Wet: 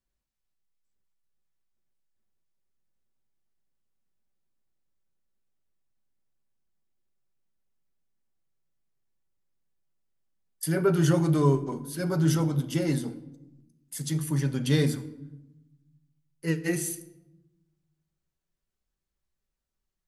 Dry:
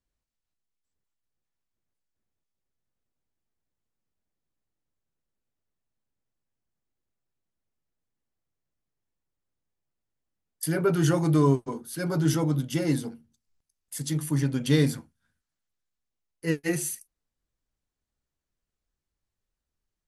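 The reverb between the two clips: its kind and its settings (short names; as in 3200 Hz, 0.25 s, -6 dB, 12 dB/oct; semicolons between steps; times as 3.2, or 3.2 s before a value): shoebox room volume 4000 m³, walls furnished, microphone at 1.1 m; gain -1.5 dB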